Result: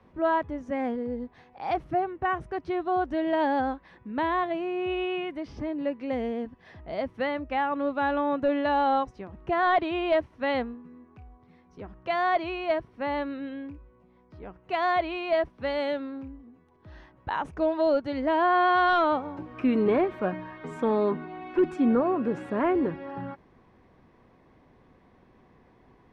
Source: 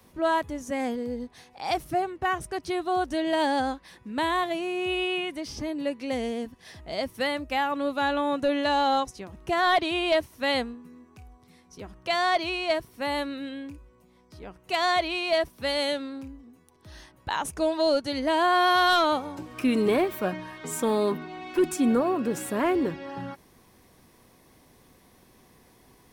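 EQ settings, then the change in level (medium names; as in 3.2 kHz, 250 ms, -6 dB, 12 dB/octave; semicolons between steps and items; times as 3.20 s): low-pass 1.9 kHz 12 dB/octave; 0.0 dB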